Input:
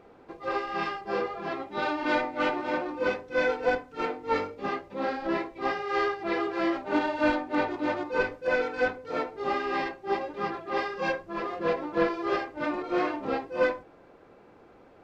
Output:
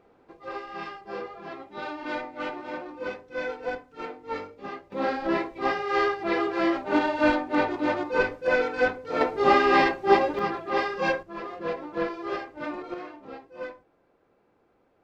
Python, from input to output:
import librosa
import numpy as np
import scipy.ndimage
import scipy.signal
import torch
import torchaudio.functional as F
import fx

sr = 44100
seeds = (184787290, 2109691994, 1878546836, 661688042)

y = fx.gain(x, sr, db=fx.steps((0.0, -6.0), (4.92, 3.0), (9.21, 10.0), (10.39, 3.5), (11.23, -3.5), (12.94, -12.0)))